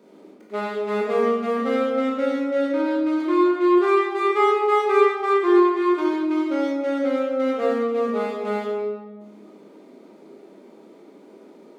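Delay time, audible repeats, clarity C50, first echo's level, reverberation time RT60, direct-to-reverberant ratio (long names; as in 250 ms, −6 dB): no echo audible, no echo audible, −1.0 dB, no echo audible, 1.5 s, −5.0 dB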